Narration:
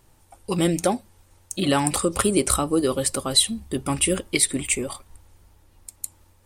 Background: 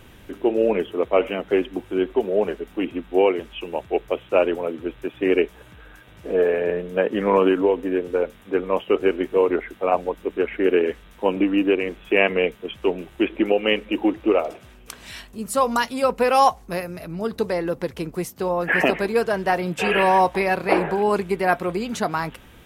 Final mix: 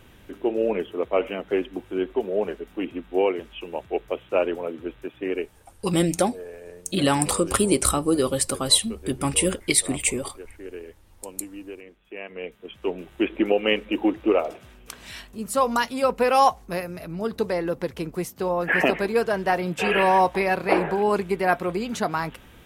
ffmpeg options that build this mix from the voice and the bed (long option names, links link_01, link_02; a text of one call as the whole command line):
ffmpeg -i stem1.wav -i stem2.wav -filter_complex "[0:a]adelay=5350,volume=0dB[link_01];[1:a]volume=14dB,afade=type=out:start_time=4.9:duration=0.86:silence=0.16788,afade=type=in:start_time=12.28:duration=1.05:silence=0.125893[link_02];[link_01][link_02]amix=inputs=2:normalize=0" out.wav